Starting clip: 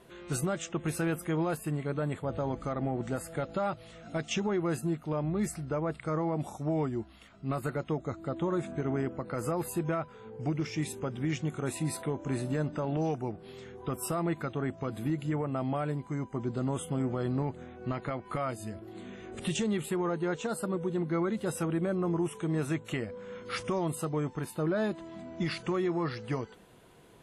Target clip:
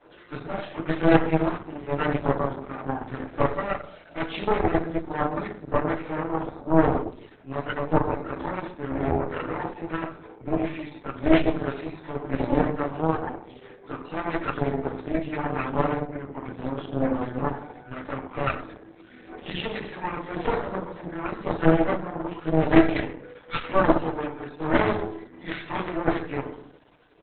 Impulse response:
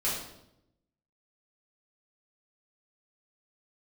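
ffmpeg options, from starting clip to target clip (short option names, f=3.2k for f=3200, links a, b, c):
-filter_complex "[0:a]acrossover=split=280 4300:gain=0.112 1 0.158[a][b][c];[a][b][c]amix=inputs=3:normalize=0,aphaser=in_gain=1:out_gain=1:delay=1.4:decay=0.45:speed=0.88:type=triangular,tremolo=f=0.97:d=0.3,aecho=1:1:6.7:0.79,acontrast=26,highpass=f=46:p=1,lowshelf=f=81:g=11.5,asplit=2[d][e];[e]adelay=129,lowpass=f=930:p=1,volume=-13dB,asplit=2[f][g];[g]adelay=129,lowpass=f=930:p=1,volume=0.48,asplit=2[h][i];[i]adelay=129,lowpass=f=930:p=1,volume=0.48,asplit=2[j][k];[k]adelay=129,lowpass=f=930:p=1,volume=0.48,asplit=2[l][m];[m]adelay=129,lowpass=f=930:p=1,volume=0.48[n];[d][f][h][j][l][n]amix=inputs=6:normalize=0[o];[1:a]atrim=start_sample=2205,asetrate=66150,aresample=44100[p];[o][p]afir=irnorm=-1:irlink=0,aresample=32000,aresample=44100,aeval=exprs='0.562*(cos(1*acos(clip(val(0)/0.562,-1,1)))-cos(1*PI/2))+0.0891*(cos(3*acos(clip(val(0)/0.562,-1,1)))-cos(3*PI/2))+0.2*(cos(4*acos(clip(val(0)/0.562,-1,1)))-cos(4*PI/2))':c=same" -ar 48000 -c:a libopus -b:a 8k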